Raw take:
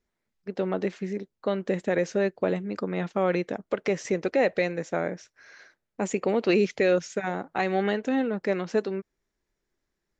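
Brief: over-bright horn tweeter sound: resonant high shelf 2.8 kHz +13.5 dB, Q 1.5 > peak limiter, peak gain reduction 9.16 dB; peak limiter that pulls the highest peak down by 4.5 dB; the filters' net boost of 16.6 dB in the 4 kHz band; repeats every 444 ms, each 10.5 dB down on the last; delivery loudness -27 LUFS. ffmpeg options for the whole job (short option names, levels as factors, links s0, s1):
-af "equalizer=f=4000:t=o:g=3,alimiter=limit=0.158:level=0:latency=1,highshelf=f=2800:t=q:w=1.5:g=13.5,aecho=1:1:444|888|1332:0.299|0.0896|0.0269,volume=1.33,alimiter=limit=0.168:level=0:latency=1"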